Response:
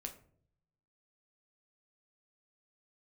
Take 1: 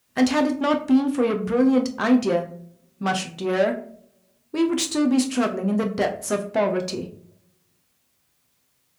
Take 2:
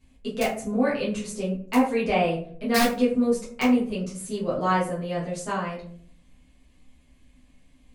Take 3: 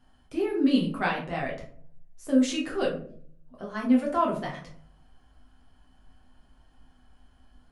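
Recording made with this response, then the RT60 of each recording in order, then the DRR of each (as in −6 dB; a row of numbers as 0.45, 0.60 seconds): 1; non-exponential decay, 0.55 s, 0.55 s; 3.5, −9.5, −3.5 decibels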